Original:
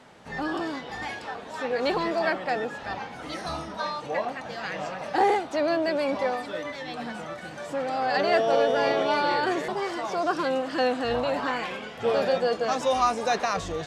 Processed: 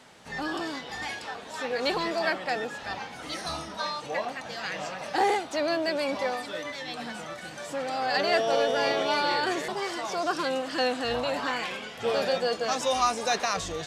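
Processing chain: treble shelf 2.5 kHz +10 dB; trim -3.5 dB

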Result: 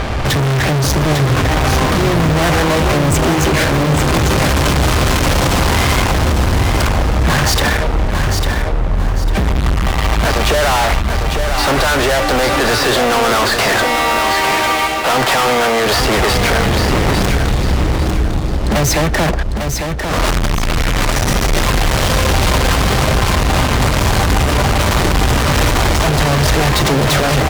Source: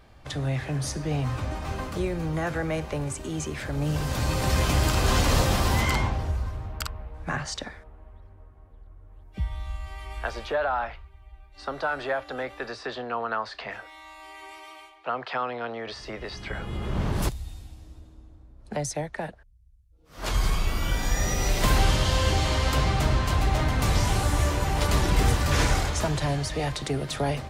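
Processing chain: low-pass 7.8 kHz; treble shelf 3.2 kHz -9 dB; in parallel at +2.5 dB: compression, threshold -33 dBFS, peak gain reduction 15.5 dB; on the sum: fuzz box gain 47 dB, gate -52 dBFS; feedback delay 850 ms, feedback 33%, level -6 dB

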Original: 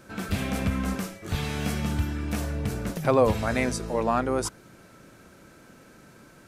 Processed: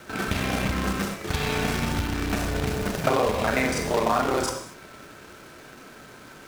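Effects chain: time reversed locally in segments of 31 ms; gated-style reverb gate 270 ms falling, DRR 4 dB; companded quantiser 4-bit; treble shelf 6.4 kHz -10.5 dB; compression 6:1, threshold -24 dBFS, peak gain reduction 9 dB; bass shelf 360 Hz -7.5 dB; trim +8 dB

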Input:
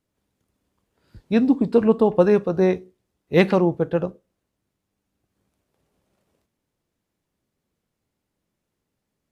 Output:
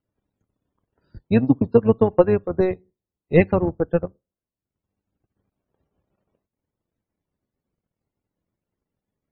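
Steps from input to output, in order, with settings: octave divider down 1 oct, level -5 dB; loudest bins only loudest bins 64; transient shaper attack +7 dB, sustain -11 dB; trim -4 dB

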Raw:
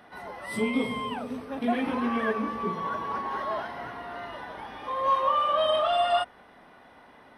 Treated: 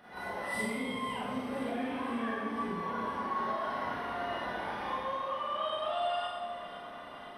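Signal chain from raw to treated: compression, threshold -35 dBFS, peak gain reduction 14.5 dB; echo whose repeats swap between lows and highs 254 ms, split 820 Hz, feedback 82%, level -11.5 dB; Schroeder reverb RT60 1.1 s, combs from 31 ms, DRR -7.5 dB; trim -5 dB

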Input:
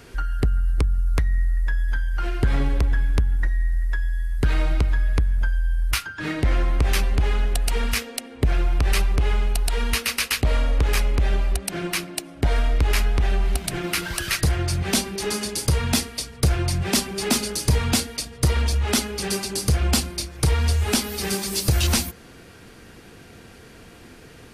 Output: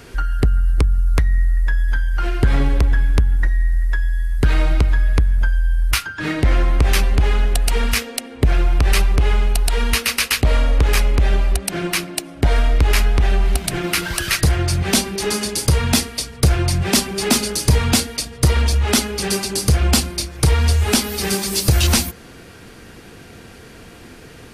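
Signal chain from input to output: trim +5 dB

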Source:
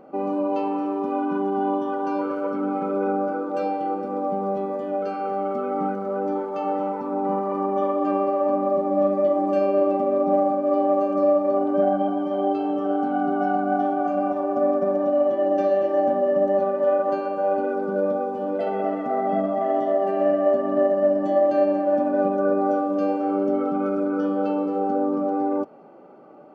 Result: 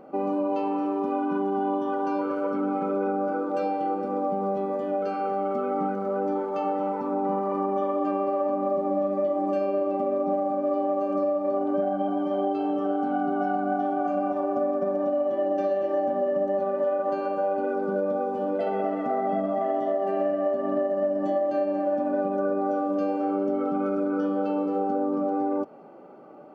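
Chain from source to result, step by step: compression, threshold -22 dBFS, peak gain reduction 7.5 dB

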